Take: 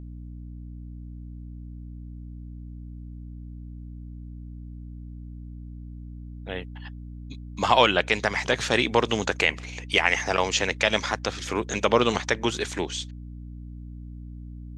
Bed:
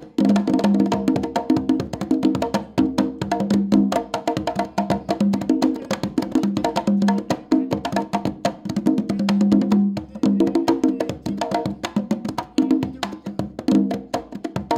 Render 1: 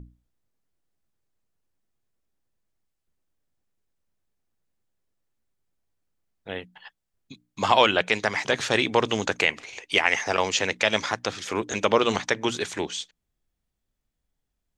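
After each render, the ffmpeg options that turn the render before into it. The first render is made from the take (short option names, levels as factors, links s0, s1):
-af "bandreject=f=60:t=h:w=6,bandreject=f=120:t=h:w=6,bandreject=f=180:t=h:w=6,bandreject=f=240:t=h:w=6,bandreject=f=300:t=h:w=6"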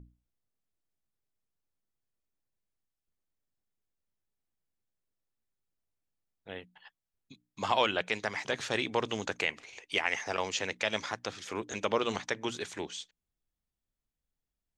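-af "volume=0.355"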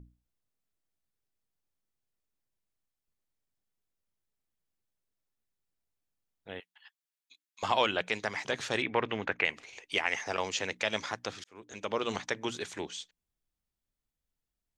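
-filter_complex "[0:a]asettb=1/sr,asplit=3[s0][s1][s2];[s0]atrim=end=6.604[s3];[s1]atrim=start=6.6:end=7.63,asetpts=PTS-STARTPTS,afade=t=in:d=0.004:c=qsin,afade=t=out:st=1.026:d=0.004:c=qsin,highpass=1500[s4];[s2]atrim=start=7.626[s5];[s3][s4]acrossfade=d=0.004:c1=hsin:c2=qsin[s6];[s6][s5]acrossfade=d=0.004:c1=qsin:c2=hsin,asettb=1/sr,asplit=3[s7][s8][s9];[s7]atrim=end=8.824[s10];[s8]atrim=start=8.82:end=9.45,asetpts=PTS-STARTPTS,afade=t=in:d=0.004:c=qsin,afade=t=out:st=0.626:d=0.004:c=qsin,lowpass=f=2100:t=q:w=2.1[s11];[s9]atrim=start=9.446[s12];[s10][s11]acrossfade=d=0.004:c1=hsin:c2=qsin[s13];[s13][s12]acrossfade=d=0.004:c1=qsin:c2=hsin,asplit=2[s14][s15];[s14]atrim=end=11.44,asetpts=PTS-STARTPTS,afade=t=out:st=11.436:d=0.004:c=hsin[s16];[s15]atrim=start=11.44,asetpts=PTS-STARTPTS,afade=t=in:d=0.74[s17];[s16][s17]concat=n=2:v=0:a=1"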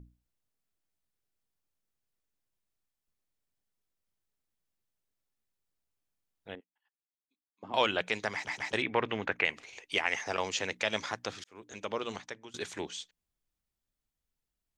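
-filter_complex "[0:a]asettb=1/sr,asplit=3[s0][s1][s2];[s0]atrim=end=6.554[s3];[s1]atrim=start=6.55:end=7.74,asetpts=PTS-STARTPTS,afade=t=in:d=0.004:c=qsin,afade=t=out:st=1.186:d=0.004:c=qsin,bandpass=f=260:t=q:w=2.2[s4];[s2]atrim=start=7.736[s5];[s3][s4]acrossfade=d=0.004:c1=hsin:c2=qsin[s6];[s6][s5]acrossfade=d=0.004:c1=qsin:c2=hsin,asplit=5[s7][s8][s9][s10][s11];[s7]atrim=end=8.472[s12];[s8]atrim=start=8.338:end=8.472[s13];[s9]atrim=start=8.338:end=8.472[s14];[s10]atrim=start=8.728:end=12.54,asetpts=PTS-STARTPTS,afade=t=out:st=2.972:d=0.84:silence=0.0944061[s15];[s11]atrim=start=12.54,asetpts=PTS-STARTPTS,afade=t=in:d=0.004:c=hsin:silence=0.0944061[s16];[s12][s13]acrossfade=d=0.004:c1=hsin:c2=hsin[s17];[s17][s14]acrossfade=d=0.004:c1=hsin:c2=hsin[s18];[s15][s16]concat=n=2:v=0:a=1[s19];[s18][s19]acrossfade=d=0.004:c1=hsin:c2=hsin"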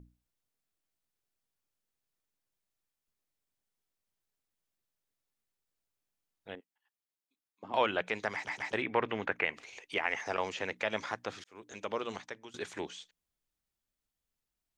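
-filter_complex "[0:a]acrossover=split=2600[s0][s1];[s1]acompressor=threshold=0.00398:ratio=4:attack=1:release=60[s2];[s0][s2]amix=inputs=2:normalize=0,lowshelf=f=170:g=-4.5"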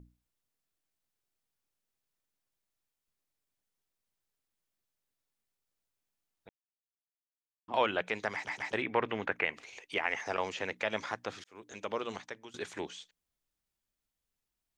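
-filter_complex "[0:a]asplit=3[s0][s1][s2];[s0]atrim=end=6.49,asetpts=PTS-STARTPTS,afade=t=out:st=6.486:d=0.004:c=hsin[s3];[s1]atrim=start=6.49:end=7.68,asetpts=PTS-STARTPTS,volume=0[s4];[s2]atrim=start=7.68,asetpts=PTS-STARTPTS,afade=t=in:d=0.004:c=hsin[s5];[s3][s4][s5]concat=n=3:v=0:a=1"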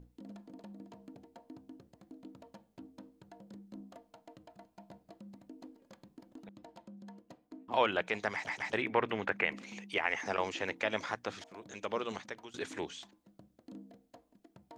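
-filter_complex "[1:a]volume=0.0224[s0];[0:a][s0]amix=inputs=2:normalize=0"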